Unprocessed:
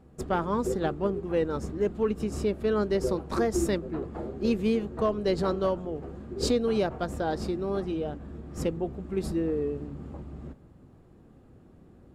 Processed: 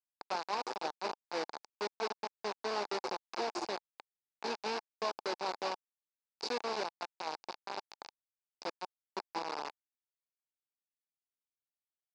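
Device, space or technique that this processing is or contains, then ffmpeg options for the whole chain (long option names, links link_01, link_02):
hand-held game console: -af "acrusher=bits=3:mix=0:aa=0.000001,highpass=480,equalizer=frequency=570:width_type=q:width=4:gain=-3,equalizer=frequency=870:width_type=q:width=4:gain=7,equalizer=frequency=1300:width_type=q:width=4:gain=-4,equalizer=frequency=1900:width_type=q:width=4:gain=-7,equalizer=frequency=3200:width_type=q:width=4:gain=-9,equalizer=frequency=4800:width_type=q:width=4:gain=6,lowpass=frequency=5200:width=0.5412,lowpass=frequency=5200:width=1.3066,volume=-8.5dB"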